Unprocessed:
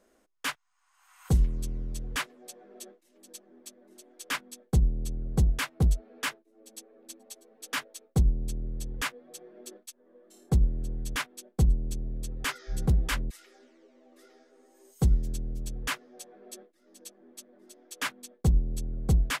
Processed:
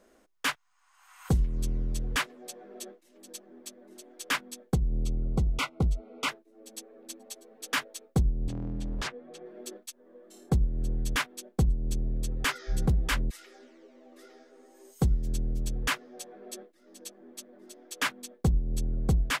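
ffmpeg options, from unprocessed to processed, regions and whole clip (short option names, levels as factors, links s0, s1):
-filter_complex "[0:a]asettb=1/sr,asplit=3[s0][s1][s2];[s0]atrim=end=4.754[s3];[s1]atrim=start=4.75:end=6.29,asetpts=PTS-STARTPTS,afade=t=in:d=0.004:c=qsin,afade=t=out:st=1.536:d=0.004:c=qsin,highshelf=f=8300:g=-11,acompressor=threshold=0.0501:ratio=2.5:attack=3.2:release=140:knee=1:detection=peak,asuperstop=centerf=1700:order=20:qfactor=3.8[s4];[s2]atrim=start=6.286[s5];[s3][s4]acrossfade=d=0.004:c1=hsin:c2=qsin[s6];[s6][s5]acrossfade=d=0.004:c1=qsin:c2=hsin,asettb=1/sr,asplit=3[s7][s8][s9];[s7]atrim=end=8.484[s10];[s8]atrim=start=8.48:end=9.46,asetpts=PTS-STARTPTS,afade=t=in:d=0.004:c=qsin,afade=t=out:st=0.976:d=0.004:c=qsin,bass=f=250:g=2,treble=f=4000:g=-12,aeval=exprs='0.0251*(abs(mod(val(0)/0.0251+3,4)-2)-1)':c=same,lowpass=9900[s11];[s9]atrim=start=9.456[s12];[s10][s11]acrossfade=d=0.004:c1=hsin:c2=qsin[s13];[s13][s12]acrossfade=d=0.004:c1=qsin:c2=hsin,equalizer=f=11000:w=0.6:g=-3,acompressor=threshold=0.0398:ratio=3,volume=1.68"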